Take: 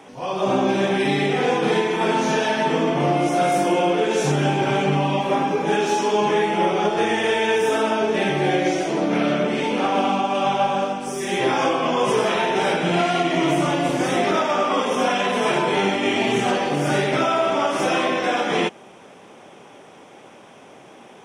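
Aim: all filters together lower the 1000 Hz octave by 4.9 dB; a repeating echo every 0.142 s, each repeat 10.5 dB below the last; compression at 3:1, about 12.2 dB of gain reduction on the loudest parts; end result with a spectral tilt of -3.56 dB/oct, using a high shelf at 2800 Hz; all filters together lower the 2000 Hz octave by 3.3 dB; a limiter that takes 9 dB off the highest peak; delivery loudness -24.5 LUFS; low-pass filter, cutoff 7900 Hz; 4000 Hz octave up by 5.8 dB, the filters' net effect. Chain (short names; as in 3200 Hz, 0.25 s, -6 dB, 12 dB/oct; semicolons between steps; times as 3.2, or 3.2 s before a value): LPF 7900 Hz; bell 1000 Hz -6.5 dB; bell 2000 Hz -8.5 dB; high shelf 2800 Hz +9 dB; bell 4000 Hz +5 dB; compressor 3:1, threshold -34 dBFS; limiter -29 dBFS; feedback echo 0.142 s, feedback 30%, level -10.5 dB; gain +12.5 dB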